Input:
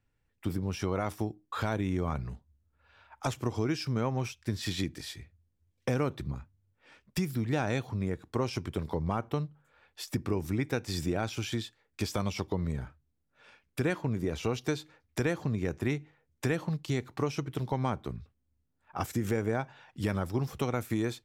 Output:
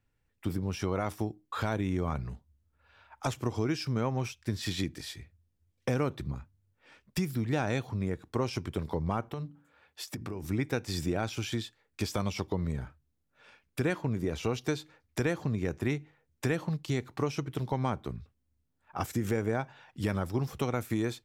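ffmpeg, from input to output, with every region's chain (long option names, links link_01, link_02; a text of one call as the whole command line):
ffmpeg -i in.wav -filter_complex "[0:a]asettb=1/sr,asplit=3[link_01][link_02][link_03];[link_01]atrim=end=9.284[link_04];[link_02]atrim=start=9.28:end=10.44,asetpts=PTS-STARTPTS,afade=type=in:duration=0.004:curve=qsin,afade=type=out:start_time=1.156:duration=0.004:curve=qsin,bandreject=frequency=57.83:width_type=h:width=4,bandreject=frequency=115.66:width_type=h:width=4,bandreject=frequency=173.49:width_type=h:width=4,bandreject=frequency=231.32:width_type=h:width=4,bandreject=frequency=289.15:width_type=h:width=4,acompressor=threshold=-33dB:ratio=5:attack=3.2:release=140:knee=1:detection=peak,highpass=44[link_05];[link_03]atrim=start=10.436[link_06];[link_04][link_05]acrossfade=duration=0.004:curve1=hsin:curve2=qsin[link_07];[link_07][link_06]acrossfade=duration=0.004:curve1=qsin:curve2=hsin" out.wav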